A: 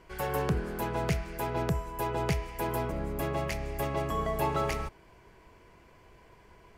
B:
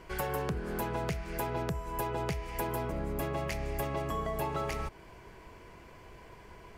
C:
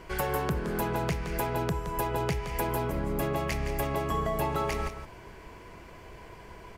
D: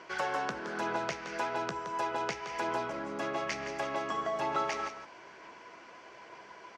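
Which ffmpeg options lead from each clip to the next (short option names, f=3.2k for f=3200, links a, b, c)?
-af "acompressor=threshold=-36dB:ratio=6,volume=5dB"
-af "aecho=1:1:169:0.316,volume=4dB"
-filter_complex "[0:a]highpass=360,equalizer=f=430:t=q:w=4:g=-5,equalizer=f=1.4k:t=q:w=4:g=4,equalizer=f=5.9k:t=q:w=4:g=5,lowpass=f=6.3k:w=0.5412,lowpass=f=6.3k:w=1.3066,asplit=2[a][b];[b]adelay=15,volume=-12dB[c];[a][c]amix=inputs=2:normalize=0,aphaser=in_gain=1:out_gain=1:delay=4.2:decay=0.2:speed=1.1:type=sinusoidal,volume=-1.5dB"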